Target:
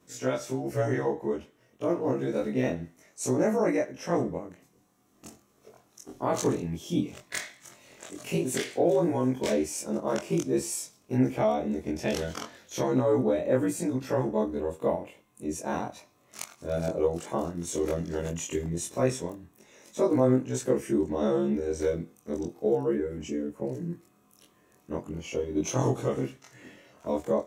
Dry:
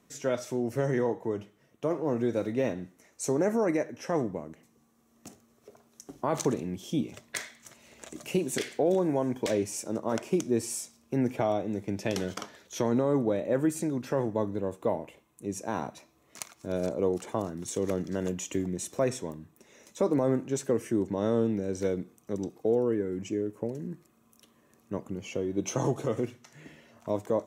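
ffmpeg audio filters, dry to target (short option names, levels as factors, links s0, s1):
-af "afftfilt=real='re':imag='-im':win_size=2048:overlap=0.75,volume=2"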